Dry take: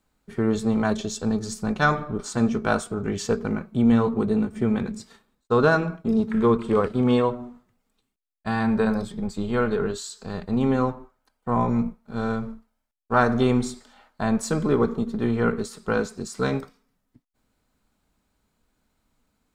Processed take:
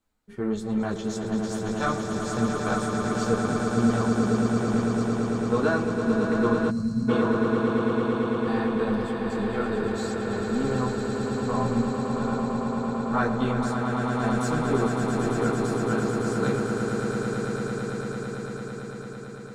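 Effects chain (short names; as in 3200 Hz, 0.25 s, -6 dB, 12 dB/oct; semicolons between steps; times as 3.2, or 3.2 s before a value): chorus voices 4, 1.1 Hz, delay 12 ms, depth 3.2 ms; swelling echo 0.112 s, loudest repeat 8, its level -7.5 dB; spectral gain 6.7–7.09, 250–4000 Hz -20 dB; gain -3.5 dB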